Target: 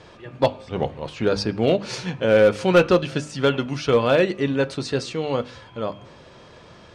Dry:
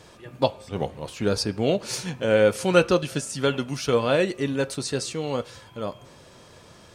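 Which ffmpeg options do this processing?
-filter_complex "[0:a]lowpass=4.1k,bandreject=f=50:t=h:w=6,bandreject=f=100:t=h:w=6,bandreject=f=150:t=h:w=6,bandreject=f=200:t=h:w=6,bandreject=f=250:t=h:w=6,bandreject=f=300:t=h:w=6,asplit=2[a][b];[b]aeval=exprs='0.224*(abs(mod(val(0)/0.224+3,4)-2)-1)':c=same,volume=-5dB[c];[a][c]amix=inputs=2:normalize=0"

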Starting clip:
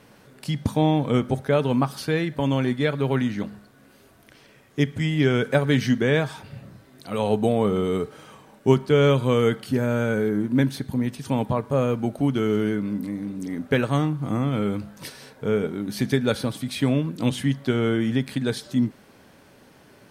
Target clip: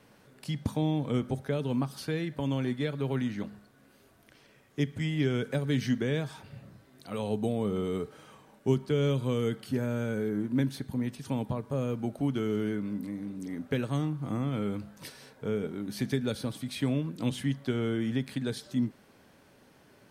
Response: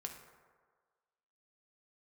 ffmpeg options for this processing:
-filter_complex "[0:a]acrossover=split=430|3000[a][b][c];[b]acompressor=threshold=-30dB:ratio=6[d];[a][d][c]amix=inputs=3:normalize=0,volume=-7dB"

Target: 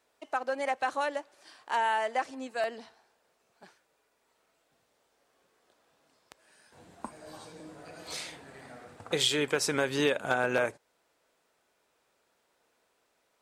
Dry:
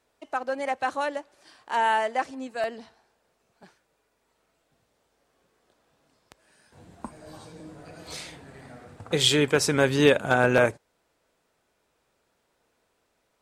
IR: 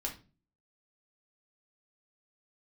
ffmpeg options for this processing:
-af "lowshelf=f=200:g=-12,acompressor=threshold=-26dB:ratio=2.5"

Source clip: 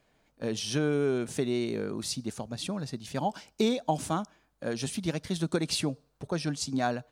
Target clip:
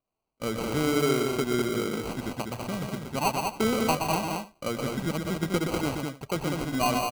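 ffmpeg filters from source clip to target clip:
-filter_complex "[0:a]agate=range=-21dB:threshold=-57dB:ratio=16:detection=peak,equalizer=f=770:w=1.6:g=6,bandreject=f=4.5k:w=7.1,asplit=2[a][b];[b]aeval=exprs='(mod(6.68*val(0)+1,2)-1)/6.68':c=same,volume=-5dB[c];[a][c]amix=inputs=2:normalize=0,acrusher=samples=25:mix=1:aa=0.000001,asplit=2[d][e];[e]aecho=0:1:123|199|273:0.531|0.596|0.1[f];[d][f]amix=inputs=2:normalize=0,volume=-4dB"

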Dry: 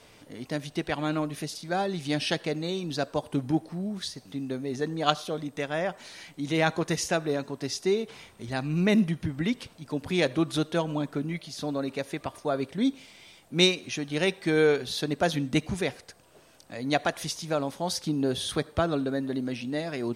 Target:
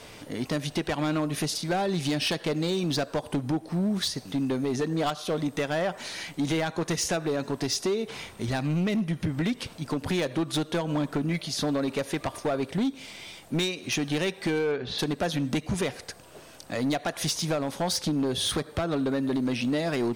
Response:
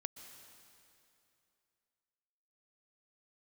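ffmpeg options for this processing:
-filter_complex "[0:a]asplit=3[a][b][c];[a]afade=t=out:st=14.58:d=0.02[d];[b]lowpass=2.6k,afade=t=in:st=14.58:d=0.02,afade=t=out:st=14.98:d=0.02[e];[c]afade=t=in:st=14.98:d=0.02[f];[d][e][f]amix=inputs=3:normalize=0,acompressor=threshold=-30dB:ratio=20,asoftclip=type=hard:threshold=-30.5dB,volume=8.5dB"

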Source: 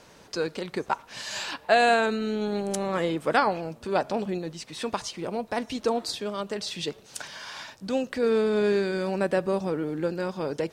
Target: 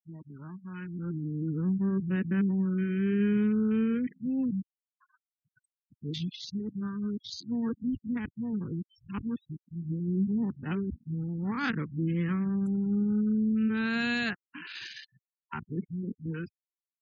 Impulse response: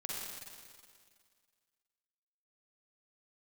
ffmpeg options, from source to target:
-filter_complex "[0:a]areverse,atempo=0.63,afwtdn=0.0158,acrossover=split=240|4100[a][b][c];[a]dynaudnorm=f=740:g=3:m=13.5dB[d];[b]asuperpass=centerf=2700:order=4:qfactor=0.76[e];[c]acrusher=bits=4:mode=log:mix=0:aa=0.000001[f];[d][e][f]amix=inputs=3:normalize=0,afftfilt=real='re*gte(hypot(re,im),0.01)':imag='im*gte(hypot(re,im),0.01)':win_size=1024:overlap=0.75,volume=-5dB"

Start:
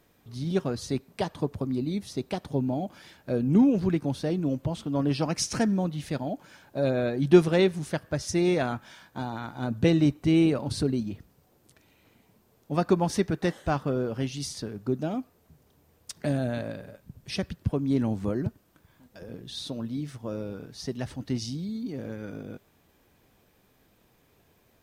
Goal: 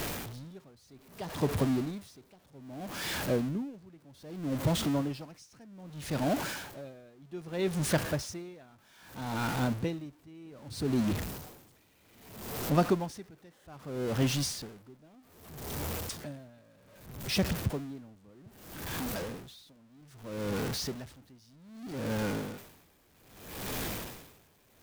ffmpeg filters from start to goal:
-af "aeval=exprs='val(0)+0.5*0.0355*sgn(val(0))':c=same,aeval=exprs='val(0)*pow(10,-31*(0.5-0.5*cos(2*PI*0.63*n/s))/20)':c=same"

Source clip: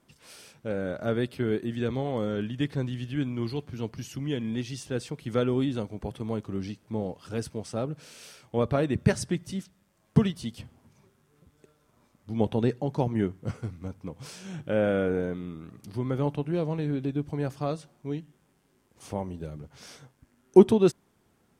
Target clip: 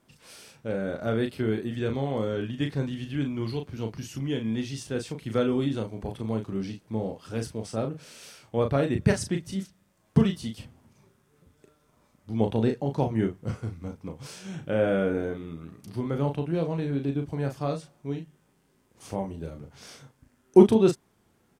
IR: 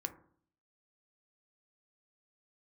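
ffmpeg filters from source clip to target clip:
-filter_complex "[0:a]asplit=2[a][b];[b]adelay=36,volume=-6dB[c];[a][c]amix=inputs=2:normalize=0"

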